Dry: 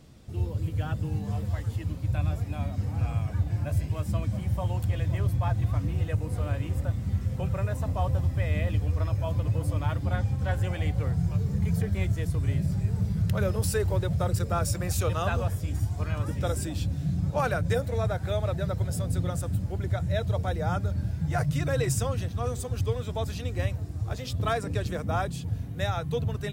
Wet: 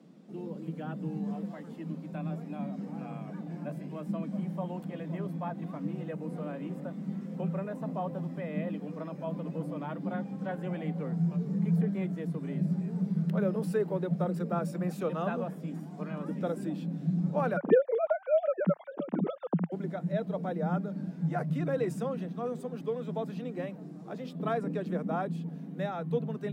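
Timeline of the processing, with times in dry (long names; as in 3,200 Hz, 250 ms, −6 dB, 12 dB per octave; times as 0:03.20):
0:17.57–0:19.72: three sine waves on the formant tracks
whole clip: dynamic equaliser 6,400 Hz, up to −7 dB, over −54 dBFS, Q 0.89; Butterworth high-pass 160 Hz 96 dB per octave; spectral tilt −3.5 dB per octave; level −4.5 dB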